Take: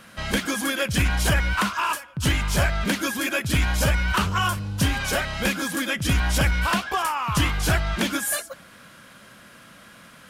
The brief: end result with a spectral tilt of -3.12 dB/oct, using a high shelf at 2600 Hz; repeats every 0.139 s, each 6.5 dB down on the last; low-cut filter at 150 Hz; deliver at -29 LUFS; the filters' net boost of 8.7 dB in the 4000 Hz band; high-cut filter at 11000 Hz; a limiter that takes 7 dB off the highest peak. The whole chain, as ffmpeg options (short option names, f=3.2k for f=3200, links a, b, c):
-af "highpass=150,lowpass=11k,highshelf=f=2.6k:g=5,equalizer=f=4k:t=o:g=7.5,alimiter=limit=-12dB:level=0:latency=1,aecho=1:1:139|278|417|556|695|834:0.473|0.222|0.105|0.0491|0.0231|0.0109,volume=-8dB"